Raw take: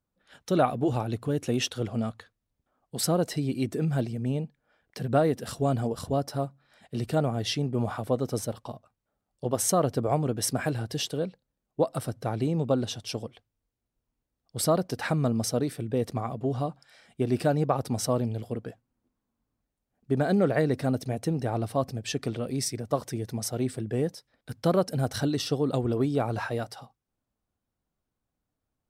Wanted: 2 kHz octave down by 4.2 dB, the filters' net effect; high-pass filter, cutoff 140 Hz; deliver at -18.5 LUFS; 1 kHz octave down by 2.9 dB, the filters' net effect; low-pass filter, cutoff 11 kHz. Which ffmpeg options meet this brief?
-af "highpass=140,lowpass=11000,equalizer=f=1000:t=o:g=-3.5,equalizer=f=2000:t=o:g=-4.5,volume=3.76"

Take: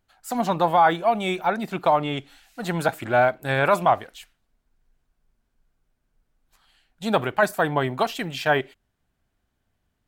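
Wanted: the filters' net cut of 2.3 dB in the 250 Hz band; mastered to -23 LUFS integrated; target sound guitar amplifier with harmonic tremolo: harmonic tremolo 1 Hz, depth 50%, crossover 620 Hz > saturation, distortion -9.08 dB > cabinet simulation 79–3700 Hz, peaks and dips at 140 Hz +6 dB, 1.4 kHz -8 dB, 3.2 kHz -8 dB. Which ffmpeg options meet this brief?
-filter_complex "[0:a]equalizer=f=250:t=o:g=-4.5,acrossover=split=620[s0][s1];[s0]aeval=exprs='val(0)*(1-0.5/2+0.5/2*cos(2*PI*1*n/s))':c=same[s2];[s1]aeval=exprs='val(0)*(1-0.5/2-0.5/2*cos(2*PI*1*n/s))':c=same[s3];[s2][s3]amix=inputs=2:normalize=0,asoftclip=threshold=0.075,highpass=79,equalizer=f=140:t=q:w=4:g=6,equalizer=f=1400:t=q:w=4:g=-8,equalizer=f=3200:t=q:w=4:g=-8,lowpass=f=3700:w=0.5412,lowpass=f=3700:w=1.3066,volume=2.51"

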